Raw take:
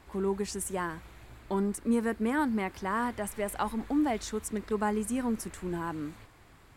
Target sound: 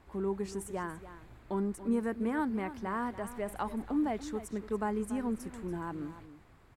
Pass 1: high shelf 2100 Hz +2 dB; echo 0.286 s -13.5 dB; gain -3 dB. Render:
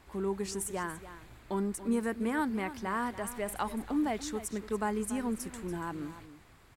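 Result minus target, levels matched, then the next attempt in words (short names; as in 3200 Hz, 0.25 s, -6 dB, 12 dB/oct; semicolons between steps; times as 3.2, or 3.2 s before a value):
4000 Hz band +6.5 dB
high shelf 2100 Hz -8 dB; echo 0.286 s -13.5 dB; gain -3 dB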